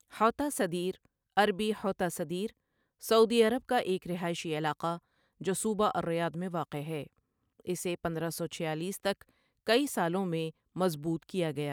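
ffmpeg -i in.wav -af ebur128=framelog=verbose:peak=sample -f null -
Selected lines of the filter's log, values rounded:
Integrated loudness:
  I:         -31.8 LUFS
  Threshold: -42.0 LUFS
Loudness range:
  LRA:         5.5 LU
  Threshold: -52.3 LUFS
  LRA low:   -35.5 LUFS
  LRA high:  -30.0 LUFS
Sample peak:
  Peak:      -12.4 dBFS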